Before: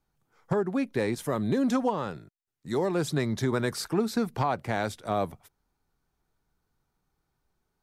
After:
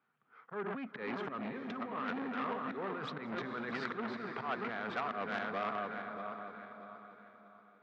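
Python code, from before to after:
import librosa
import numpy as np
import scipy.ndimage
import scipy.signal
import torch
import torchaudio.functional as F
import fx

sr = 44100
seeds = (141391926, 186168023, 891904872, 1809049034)

p1 = fx.reverse_delay_fb(x, sr, ms=317, feedback_pct=58, wet_db=-7.5)
p2 = fx.peak_eq(p1, sr, hz=1300.0, db=5.5, octaves=2.0)
p3 = fx.auto_swell(p2, sr, attack_ms=292.0)
p4 = fx.over_compress(p3, sr, threshold_db=-31.0, ratio=-1.0)
p5 = fx.cabinet(p4, sr, low_hz=170.0, low_slope=24, high_hz=3000.0, hz=(170.0, 330.0, 560.0, 860.0, 1300.0), db=(-6, -9, -6, -8, 4))
p6 = p5 + fx.echo_diffused(p5, sr, ms=478, feedback_pct=41, wet_db=-11, dry=0)
p7 = fx.transformer_sat(p6, sr, knee_hz=1500.0)
y = p7 * 10.0 ** (-2.0 / 20.0)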